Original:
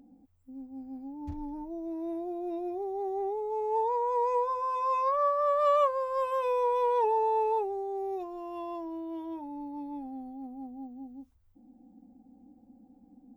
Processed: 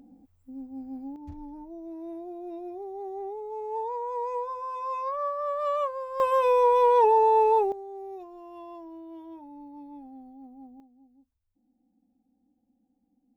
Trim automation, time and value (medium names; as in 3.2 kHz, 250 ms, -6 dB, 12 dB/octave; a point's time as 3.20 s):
+3.5 dB
from 1.16 s -3.5 dB
from 6.20 s +7 dB
from 7.72 s -5.5 dB
from 10.80 s -15 dB